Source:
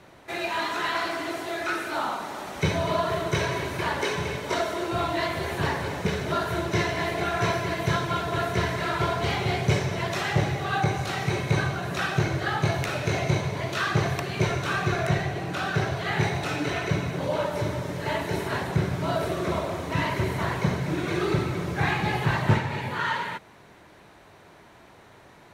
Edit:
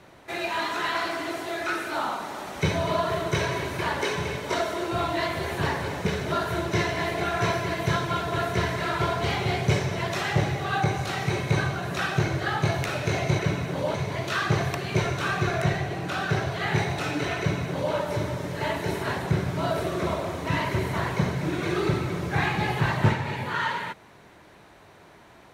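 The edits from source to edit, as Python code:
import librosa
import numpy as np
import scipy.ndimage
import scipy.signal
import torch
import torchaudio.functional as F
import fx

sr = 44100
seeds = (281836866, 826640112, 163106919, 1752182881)

y = fx.edit(x, sr, fx.duplicate(start_s=16.84, length_s=0.55, to_s=13.39), tone=tone)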